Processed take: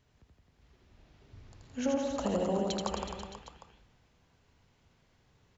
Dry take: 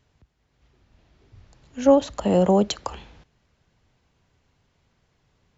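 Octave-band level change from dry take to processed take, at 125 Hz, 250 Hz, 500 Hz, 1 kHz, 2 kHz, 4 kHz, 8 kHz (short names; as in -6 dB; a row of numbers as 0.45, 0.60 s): -12.0 dB, -11.0 dB, -12.5 dB, -10.5 dB, -5.0 dB, -7.0 dB, n/a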